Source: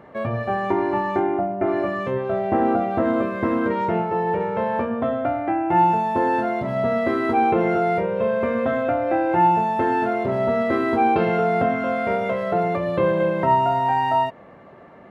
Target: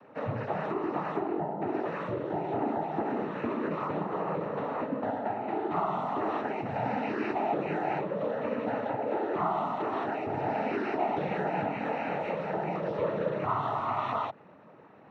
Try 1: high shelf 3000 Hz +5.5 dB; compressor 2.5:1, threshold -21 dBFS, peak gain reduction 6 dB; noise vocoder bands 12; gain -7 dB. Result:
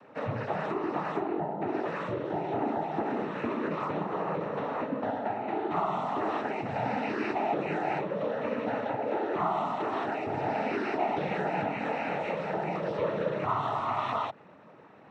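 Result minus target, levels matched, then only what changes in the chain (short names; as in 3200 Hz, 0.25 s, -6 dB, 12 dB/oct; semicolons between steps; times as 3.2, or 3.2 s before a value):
8000 Hz band +6.0 dB
change: high shelf 3000 Hz -4 dB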